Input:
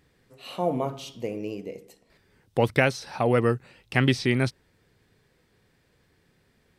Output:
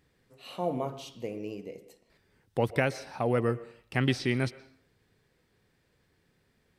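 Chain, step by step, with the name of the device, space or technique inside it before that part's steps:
0:02.58–0:04.01: parametric band 3,600 Hz −3.5 dB 2.2 octaves
filtered reverb send (on a send: high-pass filter 240 Hz + low-pass filter 5,200 Hz + convolution reverb RT60 0.55 s, pre-delay 113 ms, DRR 17 dB)
on the sum: level −5 dB

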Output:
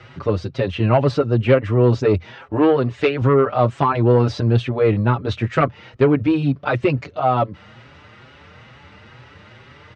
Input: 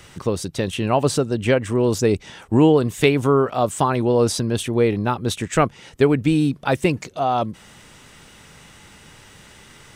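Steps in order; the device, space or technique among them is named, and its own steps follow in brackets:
barber-pole flanger into a guitar amplifier (barber-pole flanger 5.9 ms +2.2 Hz; soft clipping −12 dBFS, distortion −16 dB; loudspeaker in its box 76–4,000 Hz, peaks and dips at 83 Hz +7 dB, 120 Hz +8 dB, 170 Hz −4 dB, 580 Hz +4 dB, 1,300 Hz +4 dB, 3,400 Hz −5 dB)
0:02.27–0:03.22: low-shelf EQ 170 Hz −8.5 dB
level +4.5 dB

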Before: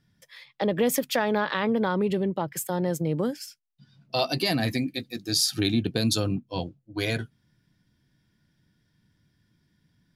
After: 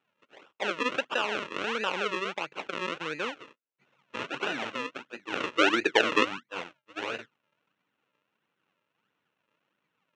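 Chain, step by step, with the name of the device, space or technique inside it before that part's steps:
0:05.42–0:06.25: flat-topped bell 520 Hz +13.5 dB
circuit-bent sampling toy (sample-and-hold swept by an LFO 40×, swing 100% 1.5 Hz; loudspeaker in its box 480–5,500 Hz, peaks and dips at 700 Hz −6 dB, 1,400 Hz +5 dB, 2,700 Hz +9 dB, 4,800 Hz −10 dB)
level −2.5 dB

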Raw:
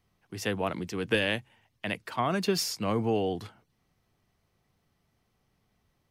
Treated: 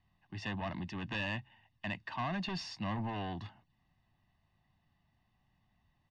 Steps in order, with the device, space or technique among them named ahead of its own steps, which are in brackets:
overdriven synthesiser ladder filter (soft clipping −29.5 dBFS, distortion −8 dB; transistor ladder low-pass 4,800 Hz, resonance 20%)
comb filter 1.1 ms, depth 80%

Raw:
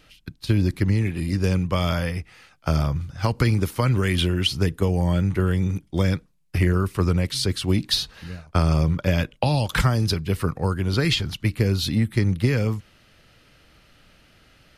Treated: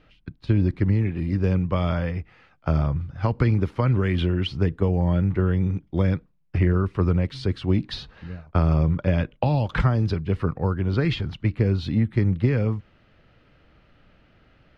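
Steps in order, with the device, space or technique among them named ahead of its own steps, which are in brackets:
phone in a pocket (low-pass filter 3,600 Hz 12 dB per octave; high-shelf EQ 2,200 Hz −10 dB)

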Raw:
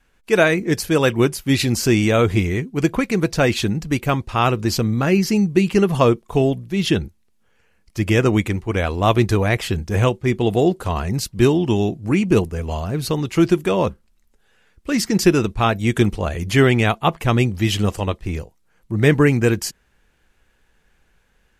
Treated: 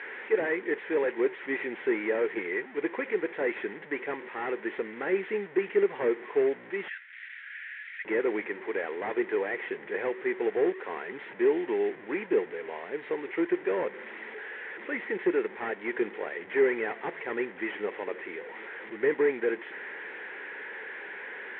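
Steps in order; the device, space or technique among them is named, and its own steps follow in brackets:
digital answering machine (band-pass filter 340–3,000 Hz; linear delta modulator 16 kbit/s, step −29.5 dBFS; loudspeaker in its box 400–3,300 Hz, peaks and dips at 410 Hz +7 dB, 670 Hz −9 dB, 1,200 Hz −9 dB, 1,900 Hz +9 dB, 2,800 Hz −7 dB)
0:06.88–0:08.05: Butterworth high-pass 1,500 Hz 48 dB per octave
level −5.5 dB

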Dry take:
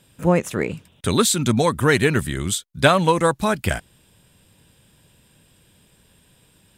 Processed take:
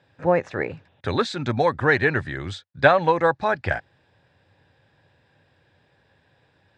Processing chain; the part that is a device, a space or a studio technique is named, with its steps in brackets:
guitar cabinet (loudspeaker in its box 92–4,500 Hz, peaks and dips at 94 Hz +6 dB, 200 Hz −10 dB, 550 Hz +5 dB, 790 Hz +9 dB, 1,700 Hz +9 dB, 3,100 Hz −8 dB)
level −4.5 dB

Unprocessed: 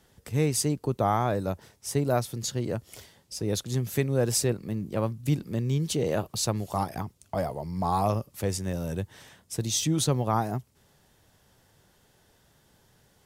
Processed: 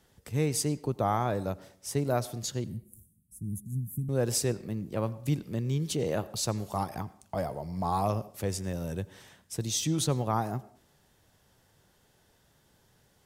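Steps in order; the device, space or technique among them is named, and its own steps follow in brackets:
0:02.64–0:04.09: elliptic band-stop filter 220–9,600 Hz, stop band 40 dB
filtered reverb send (on a send: high-pass filter 230 Hz + low-pass filter 8,400 Hz + convolution reverb RT60 0.60 s, pre-delay 80 ms, DRR 18 dB)
on the sum: level −3 dB

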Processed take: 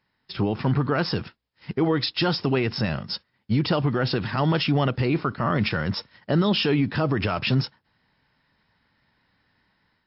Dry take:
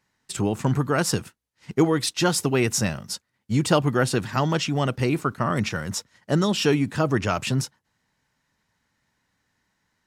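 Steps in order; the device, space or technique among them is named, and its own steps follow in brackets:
low-bitrate web radio (automatic gain control gain up to 6 dB; brickwall limiter −13 dBFS, peak gain reduction 10 dB; MP3 40 kbit/s 12,000 Hz)

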